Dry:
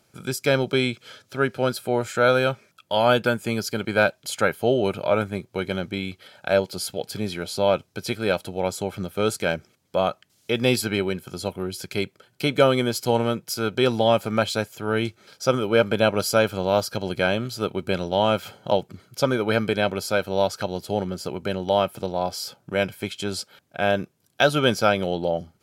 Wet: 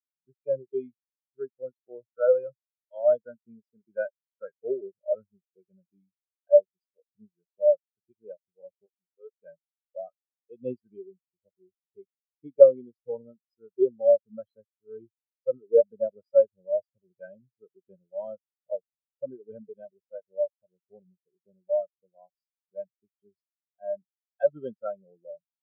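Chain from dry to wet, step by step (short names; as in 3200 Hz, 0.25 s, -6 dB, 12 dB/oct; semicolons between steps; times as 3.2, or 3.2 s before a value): 8.86–9.31 HPF 460 Hz 6 dB/oct; spectral expander 4:1; gain +1.5 dB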